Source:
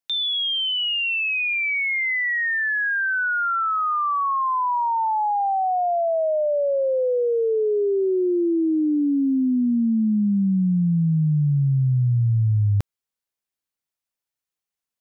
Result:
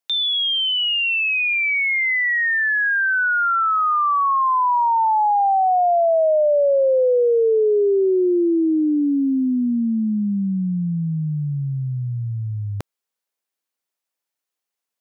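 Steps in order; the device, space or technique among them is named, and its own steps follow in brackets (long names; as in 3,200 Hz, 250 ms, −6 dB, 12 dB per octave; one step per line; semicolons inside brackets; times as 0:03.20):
filter by subtraction (in parallel: low-pass filter 480 Hz 12 dB per octave + polarity inversion)
on the sum: level +3 dB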